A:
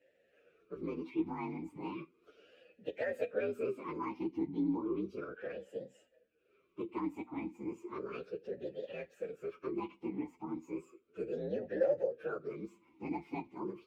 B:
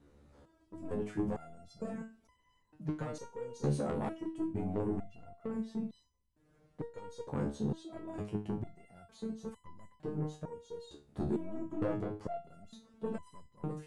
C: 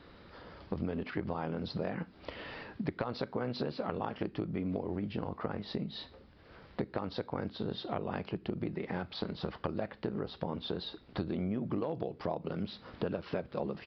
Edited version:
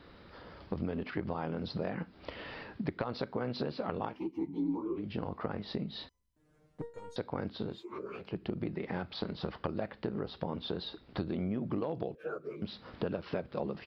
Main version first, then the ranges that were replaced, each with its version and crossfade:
C
4.13–5.02 s: from A, crossfade 0.16 s
6.09–7.16 s: from B
7.74–8.25 s: from A, crossfade 0.24 s
12.15–12.62 s: from A

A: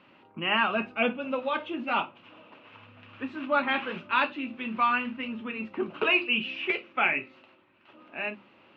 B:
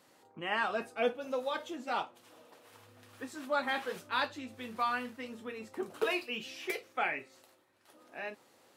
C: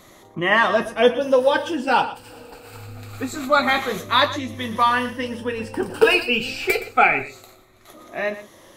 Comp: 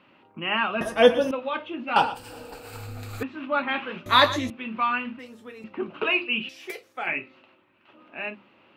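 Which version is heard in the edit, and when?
A
0.81–1.31 s: from C
1.96–3.23 s: from C
4.06–4.50 s: from C
5.19–5.64 s: from B
6.49–7.07 s: from B

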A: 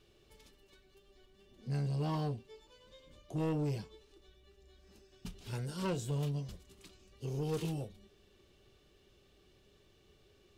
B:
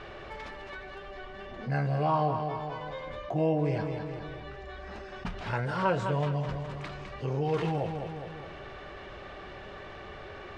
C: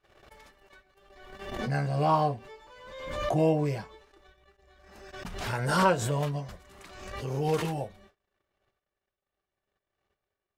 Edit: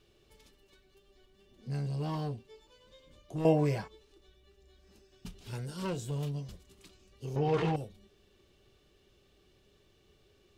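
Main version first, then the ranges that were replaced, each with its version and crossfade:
A
3.45–3.88 s: from C
7.36–7.76 s: from B

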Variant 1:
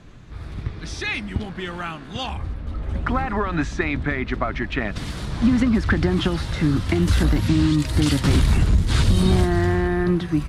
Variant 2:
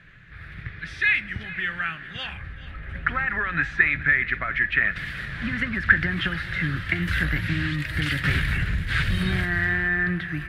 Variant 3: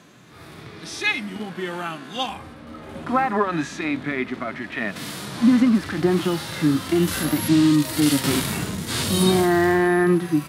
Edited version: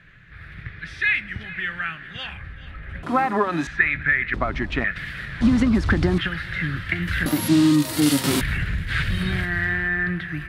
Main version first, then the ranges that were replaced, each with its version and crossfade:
2
3.03–3.67 s: from 3
4.34–4.84 s: from 1
5.41–6.18 s: from 1
7.26–8.41 s: from 3

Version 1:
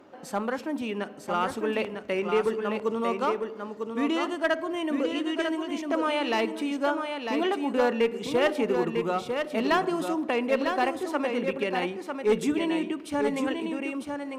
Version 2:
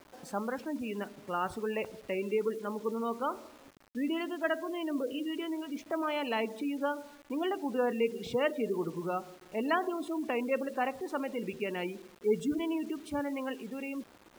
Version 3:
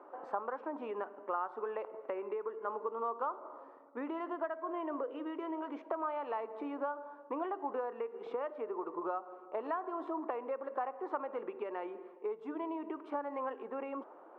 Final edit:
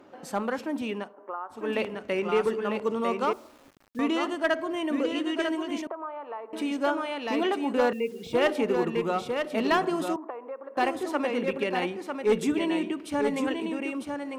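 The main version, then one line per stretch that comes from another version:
1
1.05–1.61 s: from 3, crossfade 0.24 s
3.33–3.99 s: from 2
5.87–6.53 s: from 3
7.93–8.33 s: from 2
10.16–10.77 s: from 3

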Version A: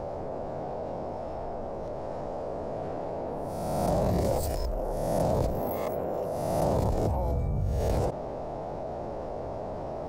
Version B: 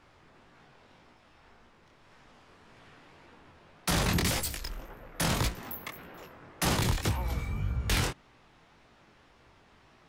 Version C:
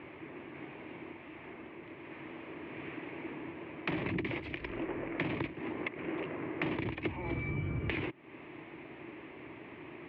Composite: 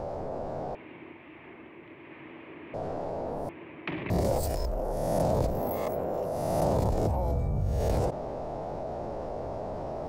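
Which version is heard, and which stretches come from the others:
A
0.75–2.74 s: from C
3.49–4.10 s: from C
not used: B

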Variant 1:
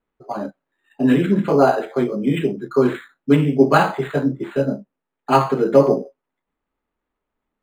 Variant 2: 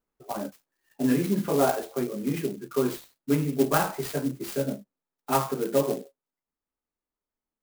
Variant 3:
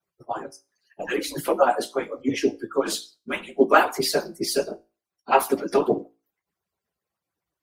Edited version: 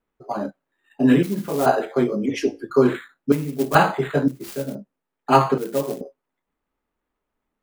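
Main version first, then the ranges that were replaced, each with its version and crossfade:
1
1.23–1.66 s: from 2
2.26–2.70 s: from 3
3.32–3.75 s: from 2
4.28–4.75 s: from 2
5.58–6.01 s: from 2

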